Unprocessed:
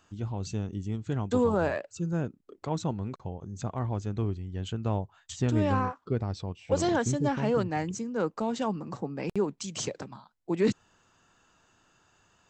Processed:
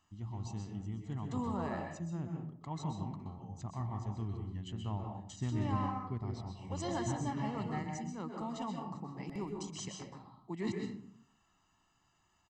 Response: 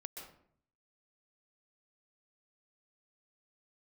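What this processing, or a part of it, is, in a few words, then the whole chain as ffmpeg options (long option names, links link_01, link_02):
microphone above a desk: -filter_complex "[0:a]aecho=1:1:1:0.7[link_01];[1:a]atrim=start_sample=2205[link_02];[link_01][link_02]afir=irnorm=-1:irlink=0,volume=-6.5dB"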